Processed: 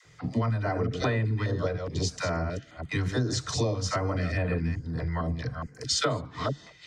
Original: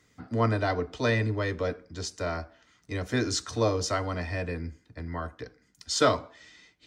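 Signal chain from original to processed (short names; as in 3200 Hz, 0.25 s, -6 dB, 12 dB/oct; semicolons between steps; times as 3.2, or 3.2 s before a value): reverse delay 0.216 s, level -9.5 dB; Bessel low-pass 7400 Hz; bell 140 Hz +13 dB 0.55 oct; dispersion lows, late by 53 ms, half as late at 500 Hz; compressor 10:1, threshold -32 dBFS, peak gain reduction 17 dB; stepped notch 4.8 Hz 240–5600 Hz; gain +8.5 dB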